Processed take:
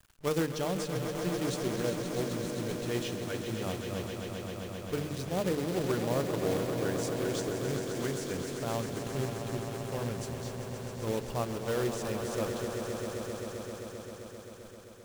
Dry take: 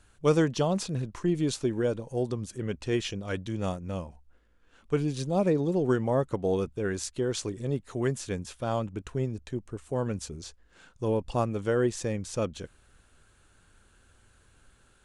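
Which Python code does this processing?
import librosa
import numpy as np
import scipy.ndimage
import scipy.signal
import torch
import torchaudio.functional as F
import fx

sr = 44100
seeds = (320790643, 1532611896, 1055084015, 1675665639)

y = fx.hum_notches(x, sr, base_hz=50, count=10)
y = fx.quant_companded(y, sr, bits=4)
y = fx.echo_swell(y, sr, ms=131, loudest=5, wet_db=-9.5)
y = y * 10.0 ** (-6.0 / 20.0)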